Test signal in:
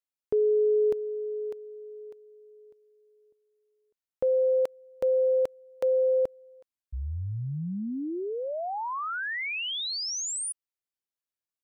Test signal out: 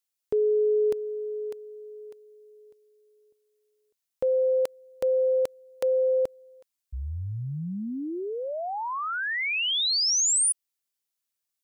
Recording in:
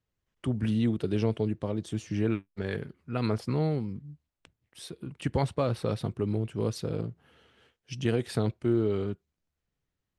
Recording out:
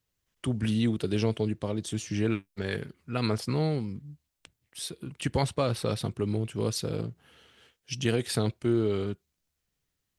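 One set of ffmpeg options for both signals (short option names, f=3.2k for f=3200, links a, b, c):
-af "highshelf=f=2.7k:g=10.5"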